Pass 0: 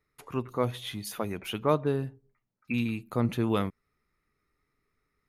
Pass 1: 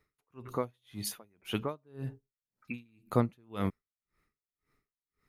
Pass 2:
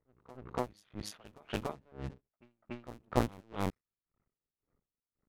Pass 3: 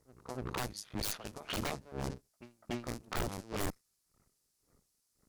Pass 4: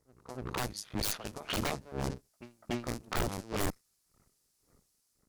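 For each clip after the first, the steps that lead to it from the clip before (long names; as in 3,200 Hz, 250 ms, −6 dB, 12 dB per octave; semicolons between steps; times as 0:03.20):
tremolo with a sine in dB 1.9 Hz, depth 39 dB; level +3.5 dB
sub-harmonics by changed cycles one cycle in 2, muted; low-pass that shuts in the quiet parts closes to 880 Hz, open at −32.5 dBFS; echo ahead of the sound 288 ms −19.5 dB
flat-topped bell 7,300 Hz +11.5 dB; tube saturation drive 24 dB, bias 0.45; wave folding −39.5 dBFS; level +11 dB
automatic gain control gain up to 6.5 dB; level −3 dB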